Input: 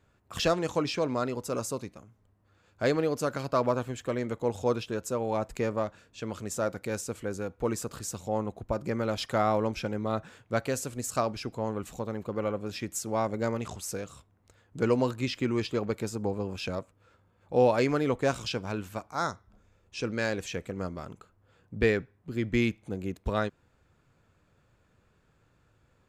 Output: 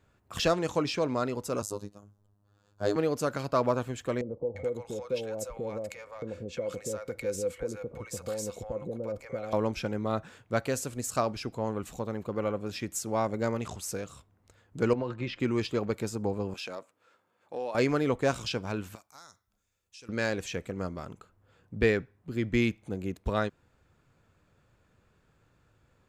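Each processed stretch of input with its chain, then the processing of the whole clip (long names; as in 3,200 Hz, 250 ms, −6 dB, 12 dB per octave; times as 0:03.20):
0:01.62–0:02.96: parametric band 2,200 Hz −14.5 dB 0.61 octaves + phases set to zero 102 Hz
0:04.21–0:09.53: downward compressor 8 to 1, threshold −34 dBFS + hollow resonant body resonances 510/2,200 Hz, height 16 dB, ringing for 70 ms + multiband delay without the direct sound lows, highs 350 ms, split 730 Hz
0:14.93–0:15.40: low-pass filter 2,800 Hz + comb filter 5.7 ms, depth 33% + downward compressor 10 to 1, threshold −27 dBFS
0:16.54–0:17.75: high-pass filter 230 Hz + low-shelf EQ 340 Hz −8.5 dB + downward compressor 2.5 to 1, threshold −35 dBFS
0:18.95–0:20.09: first-order pre-emphasis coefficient 0.9 + downward compressor 5 to 1, threshold −46 dBFS
whole clip: no processing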